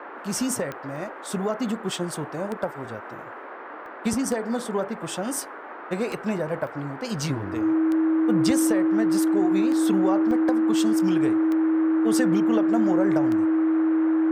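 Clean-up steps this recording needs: de-click; notch 320 Hz, Q 30; interpolate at 0.96/3.86/6.67/10.31, 1.1 ms; noise print and reduce 30 dB

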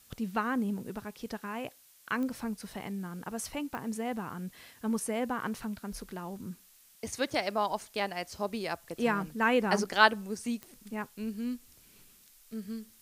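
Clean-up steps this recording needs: de-click; noise print and reduce 19 dB

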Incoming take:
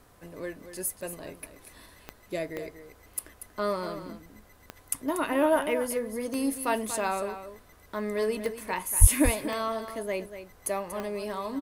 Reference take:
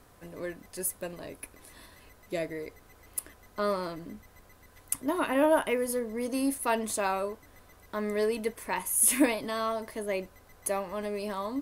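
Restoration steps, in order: de-click; 9–9.12 HPF 140 Hz 24 dB/oct; inverse comb 0.237 s -11 dB

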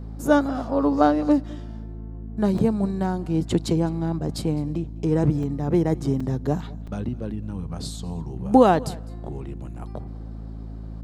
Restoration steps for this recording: de-hum 54.4 Hz, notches 5; interpolate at 2.58/5.43/6.2/6.87, 4 ms; inverse comb 0.207 s -22.5 dB

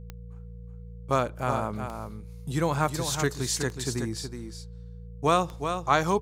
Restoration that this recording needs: de-click; de-hum 57.6 Hz, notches 3; notch 480 Hz, Q 30; inverse comb 0.37 s -7.5 dB

